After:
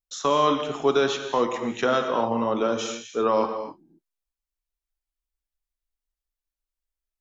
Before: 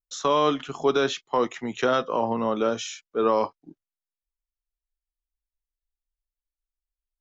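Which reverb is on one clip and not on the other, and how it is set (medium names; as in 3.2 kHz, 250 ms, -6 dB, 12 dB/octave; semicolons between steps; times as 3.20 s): gated-style reverb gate 290 ms flat, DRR 6 dB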